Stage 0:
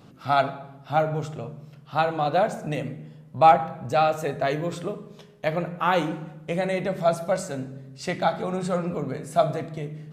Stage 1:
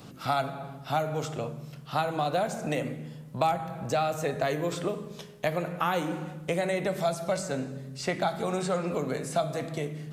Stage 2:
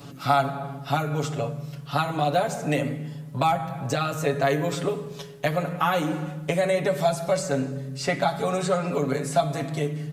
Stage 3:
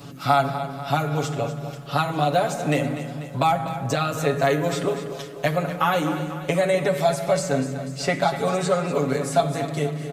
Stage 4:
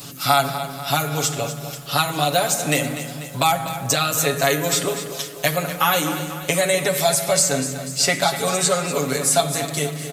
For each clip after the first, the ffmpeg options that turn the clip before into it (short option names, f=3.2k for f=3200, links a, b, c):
-filter_complex "[0:a]acrossover=split=260|2300|7000[a][b][c][d];[a]acompressor=threshold=-40dB:ratio=4[e];[b]acompressor=threshold=-30dB:ratio=4[f];[c]acompressor=threshold=-49dB:ratio=4[g];[d]acompressor=threshold=-59dB:ratio=4[h];[e][f][g][h]amix=inputs=4:normalize=0,highshelf=f=4.2k:g=8.5,volume=3dB"
-af "aecho=1:1:7.1:0.9,volume=2dB"
-af "aecho=1:1:245|490|735|980|1225|1470:0.251|0.143|0.0816|0.0465|0.0265|0.0151,volume=2dB"
-af "crystalizer=i=6:c=0,volume=-1dB"